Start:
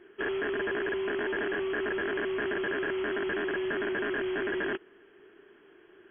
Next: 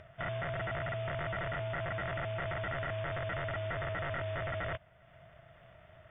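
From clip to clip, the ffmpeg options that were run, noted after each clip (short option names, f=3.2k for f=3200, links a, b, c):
-af "aeval=exprs='val(0)*sin(2*PI*270*n/s)':c=same,acompressor=mode=upward:threshold=-46dB:ratio=2.5,volume=-2.5dB"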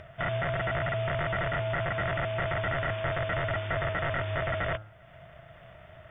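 -af "bandreject=f=107.4:t=h:w=4,bandreject=f=214.8:t=h:w=4,bandreject=f=322.2:t=h:w=4,bandreject=f=429.6:t=h:w=4,bandreject=f=537:t=h:w=4,bandreject=f=644.4:t=h:w=4,bandreject=f=751.8:t=h:w=4,bandreject=f=859.2:t=h:w=4,bandreject=f=966.6:t=h:w=4,bandreject=f=1.074k:t=h:w=4,bandreject=f=1.1814k:t=h:w=4,bandreject=f=1.2888k:t=h:w=4,bandreject=f=1.3962k:t=h:w=4,bandreject=f=1.5036k:t=h:w=4,bandreject=f=1.611k:t=h:w=4,volume=7dB"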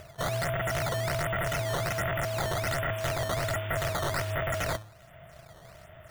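-af "acrusher=samples=10:mix=1:aa=0.000001:lfo=1:lforange=16:lforate=1.3"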